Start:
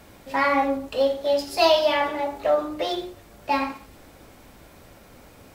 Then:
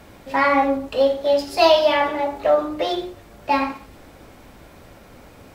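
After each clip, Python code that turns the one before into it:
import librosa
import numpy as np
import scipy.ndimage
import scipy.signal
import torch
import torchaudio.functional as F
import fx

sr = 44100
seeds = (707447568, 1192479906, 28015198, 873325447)

y = fx.high_shelf(x, sr, hz=5000.0, db=-6.0)
y = y * librosa.db_to_amplitude(4.0)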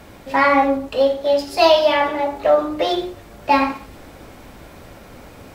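y = fx.rider(x, sr, range_db=3, speed_s=2.0)
y = y * librosa.db_to_amplitude(1.5)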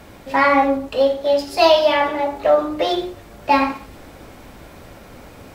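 y = x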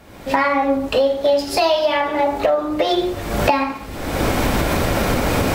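y = fx.recorder_agc(x, sr, target_db=-4.5, rise_db_per_s=44.0, max_gain_db=30)
y = y * librosa.db_to_amplitude(-4.5)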